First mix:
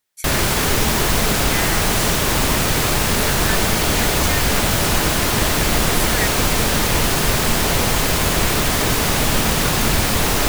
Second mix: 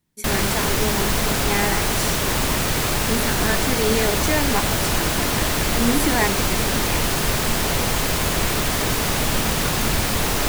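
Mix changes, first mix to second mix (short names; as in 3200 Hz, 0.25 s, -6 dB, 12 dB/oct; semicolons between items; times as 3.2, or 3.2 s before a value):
speech: remove brick-wall FIR high-pass 1200 Hz; background -3.5 dB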